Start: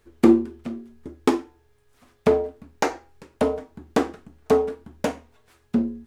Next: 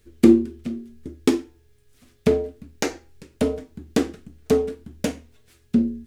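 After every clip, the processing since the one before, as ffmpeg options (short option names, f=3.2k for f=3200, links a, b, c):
-af "equalizer=f=930:t=o:w=1.7:g=-15,volume=5dB"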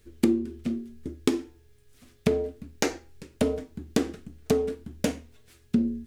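-af "acompressor=threshold=-19dB:ratio=6"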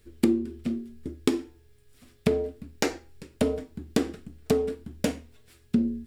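-af "bandreject=f=6.3k:w=11"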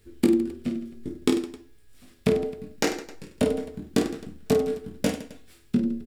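-af "aecho=1:1:20|50|95|162.5|263.8:0.631|0.398|0.251|0.158|0.1"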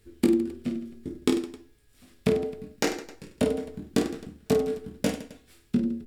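-af "volume=-1.5dB" -ar 48000 -c:a libopus -b:a 256k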